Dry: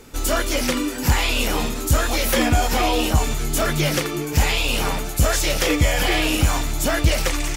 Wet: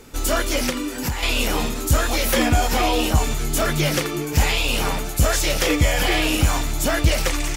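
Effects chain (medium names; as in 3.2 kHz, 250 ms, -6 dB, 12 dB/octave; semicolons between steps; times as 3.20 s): 0.69–1.23 s: compression 6:1, threshold -22 dBFS, peak gain reduction 9.5 dB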